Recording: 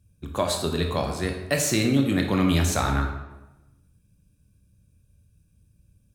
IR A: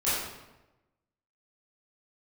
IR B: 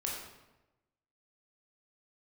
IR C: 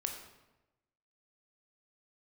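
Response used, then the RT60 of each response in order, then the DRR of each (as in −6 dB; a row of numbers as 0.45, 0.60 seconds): C; 1.0, 1.0, 1.0 seconds; −13.0, −3.5, 3.0 decibels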